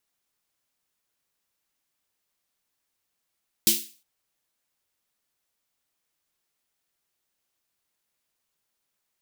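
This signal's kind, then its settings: snare drum length 0.36 s, tones 220 Hz, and 340 Hz, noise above 2700 Hz, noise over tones 11 dB, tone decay 0.30 s, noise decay 0.38 s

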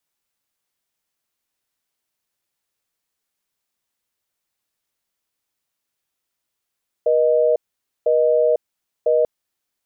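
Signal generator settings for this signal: call progress tone busy tone, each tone -16 dBFS 2.19 s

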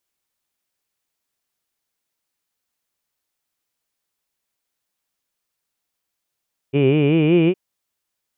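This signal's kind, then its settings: formant vowel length 0.81 s, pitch 133 Hz, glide +5 st, vibrato depth 1.15 st, F1 380 Hz, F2 2400 Hz, F3 2900 Hz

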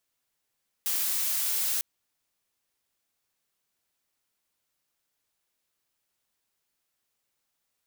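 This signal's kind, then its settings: noise blue, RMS -28 dBFS 0.95 s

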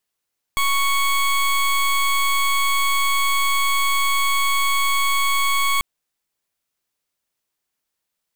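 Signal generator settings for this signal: pulse 1110 Hz, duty 20% -18.5 dBFS 5.24 s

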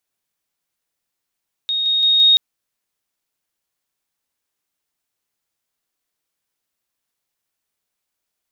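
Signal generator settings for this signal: level ladder 3730 Hz -17.5 dBFS, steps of 3 dB, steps 4, 0.17 s 0.00 s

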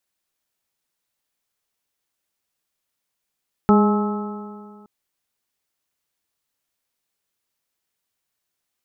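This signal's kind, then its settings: stretched partials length 1.17 s, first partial 206 Hz, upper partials -5/-17/-8/-18/-8.5 dB, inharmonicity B 0.0029, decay 2.00 s, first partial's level -11 dB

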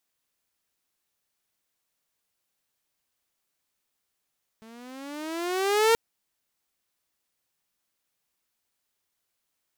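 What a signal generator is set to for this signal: gliding synth tone saw, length 1.33 s, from 219 Hz, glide +13 st, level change +30 dB, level -14 dB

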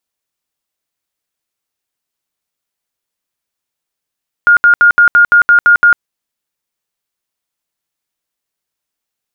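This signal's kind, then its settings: tone bursts 1420 Hz, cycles 140, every 0.17 s, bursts 9, -3 dBFS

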